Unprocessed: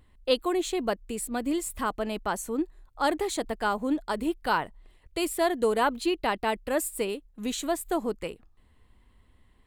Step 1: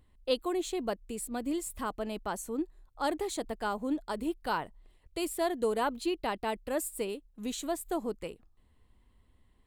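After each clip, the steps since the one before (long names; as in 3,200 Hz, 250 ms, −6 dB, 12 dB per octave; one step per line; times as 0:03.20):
parametric band 1,800 Hz −3.5 dB 1.6 octaves
level −4.5 dB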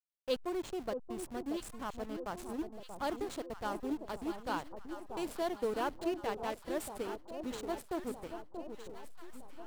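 in parallel at −10 dB: bit reduction 6 bits
on the sum: slack as between gear wheels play −29 dBFS
delay that swaps between a low-pass and a high-pass 632 ms, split 1,000 Hz, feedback 70%, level −7 dB
level −6.5 dB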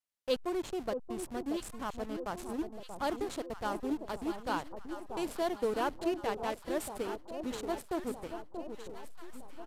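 downsampling to 32,000 Hz
level +2.5 dB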